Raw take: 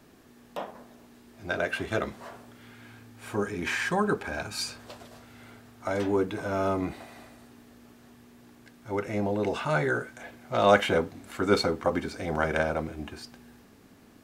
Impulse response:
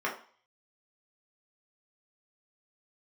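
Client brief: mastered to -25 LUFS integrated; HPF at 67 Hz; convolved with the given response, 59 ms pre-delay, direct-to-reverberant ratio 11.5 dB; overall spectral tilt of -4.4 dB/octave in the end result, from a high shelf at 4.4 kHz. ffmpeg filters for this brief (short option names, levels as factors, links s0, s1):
-filter_complex "[0:a]highpass=67,highshelf=f=4400:g=-8.5,asplit=2[s0][s1];[1:a]atrim=start_sample=2205,adelay=59[s2];[s1][s2]afir=irnorm=-1:irlink=0,volume=0.0944[s3];[s0][s3]amix=inputs=2:normalize=0,volume=1.58"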